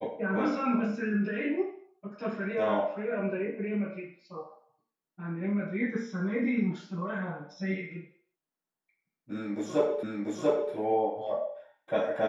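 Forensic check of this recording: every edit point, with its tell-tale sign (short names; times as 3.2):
10.03 repeat of the last 0.69 s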